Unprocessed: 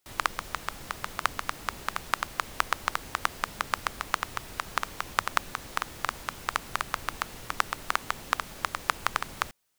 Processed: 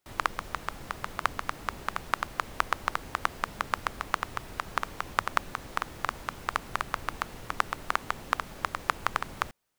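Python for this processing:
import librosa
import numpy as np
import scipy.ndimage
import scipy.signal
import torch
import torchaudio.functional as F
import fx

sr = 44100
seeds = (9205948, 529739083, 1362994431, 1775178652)

y = fx.high_shelf(x, sr, hz=2400.0, db=-8.0)
y = y * 10.0 ** (1.5 / 20.0)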